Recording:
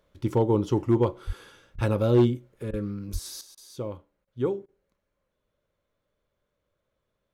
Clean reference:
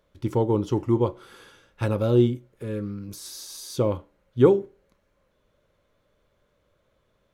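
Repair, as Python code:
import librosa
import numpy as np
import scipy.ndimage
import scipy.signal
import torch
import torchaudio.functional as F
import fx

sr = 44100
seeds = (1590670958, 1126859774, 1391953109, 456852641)

y = fx.fix_declip(x, sr, threshold_db=-13.0)
y = fx.fix_deplosive(y, sr, at_s=(1.26, 1.74, 2.69, 3.12))
y = fx.fix_interpolate(y, sr, at_s=(1.76, 2.71, 3.55, 4.25, 4.66), length_ms=23.0)
y = fx.fix_level(y, sr, at_s=3.41, step_db=10.5)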